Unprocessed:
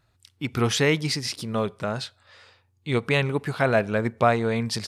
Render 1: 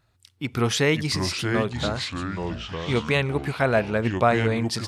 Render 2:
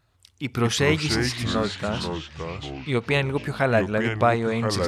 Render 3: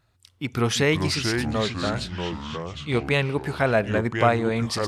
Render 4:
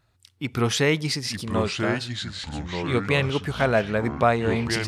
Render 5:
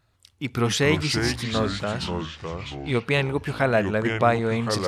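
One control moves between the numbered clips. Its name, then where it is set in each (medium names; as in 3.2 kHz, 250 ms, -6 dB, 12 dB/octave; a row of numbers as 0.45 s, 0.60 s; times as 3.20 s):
ever faster or slower copies, time: 425 ms, 90 ms, 236 ms, 782 ms, 132 ms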